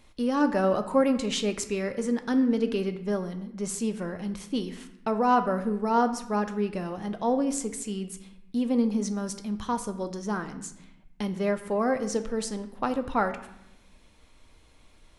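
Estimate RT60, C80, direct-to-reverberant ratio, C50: 0.80 s, 14.0 dB, 8.0 dB, 12.0 dB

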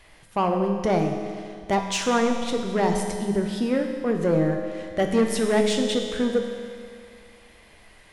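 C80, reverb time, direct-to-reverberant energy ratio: 6.0 dB, 2.2 s, 3.0 dB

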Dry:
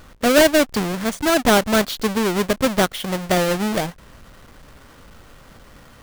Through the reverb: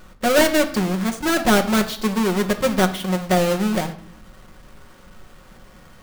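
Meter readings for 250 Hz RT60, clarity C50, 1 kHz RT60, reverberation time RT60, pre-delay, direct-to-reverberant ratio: 1.0 s, 12.5 dB, 0.60 s, 0.60 s, 5 ms, 4.0 dB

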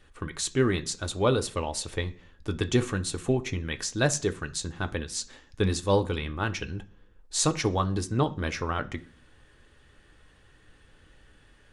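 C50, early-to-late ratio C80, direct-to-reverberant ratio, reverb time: 18.5 dB, 23.0 dB, 7.5 dB, 0.45 s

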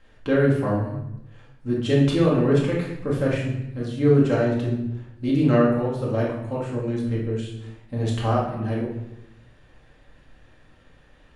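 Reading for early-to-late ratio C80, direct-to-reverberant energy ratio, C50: 6.5 dB, −5.5 dB, 2.5 dB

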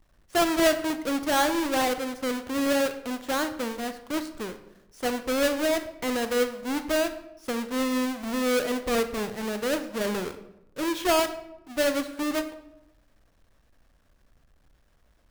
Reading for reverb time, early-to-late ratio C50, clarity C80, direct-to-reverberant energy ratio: 0.90 s, 11.0 dB, 14.0 dB, 9.0 dB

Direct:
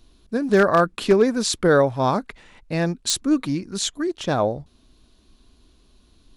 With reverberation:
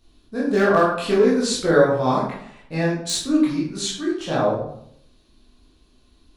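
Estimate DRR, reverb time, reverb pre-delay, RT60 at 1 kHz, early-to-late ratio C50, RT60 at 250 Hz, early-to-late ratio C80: −7.0 dB, 0.70 s, 14 ms, 0.70 s, 2.5 dB, 0.75 s, 6.5 dB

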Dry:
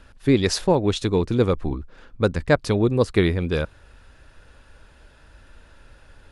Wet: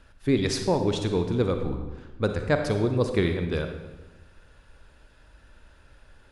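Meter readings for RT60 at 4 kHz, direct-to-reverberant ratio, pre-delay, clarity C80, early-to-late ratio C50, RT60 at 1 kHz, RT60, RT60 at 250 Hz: 0.85 s, 6.0 dB, 38 ms, 8.5 dB, 7.0 dB, 1.1 s, 1.2 s, 1.4 s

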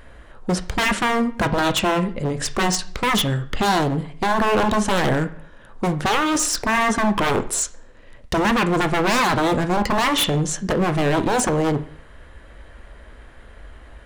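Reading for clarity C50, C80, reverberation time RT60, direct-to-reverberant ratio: 15.0 dB, 18.5 dB, 0.50 s, 8.5 dB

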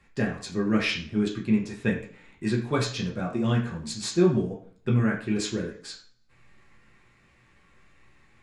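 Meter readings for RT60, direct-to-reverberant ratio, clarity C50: 0.50 s, −2.5 dB, 8.0 dB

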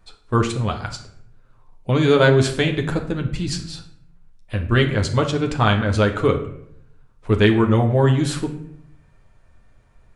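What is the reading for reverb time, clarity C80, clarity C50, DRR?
0.70 s, 13.0 dB, 10.0 dB, 2.5 dB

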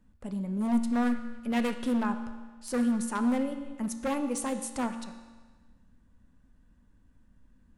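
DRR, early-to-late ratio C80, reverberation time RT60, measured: 7.0 dB, 10.5 dB, 1.4 s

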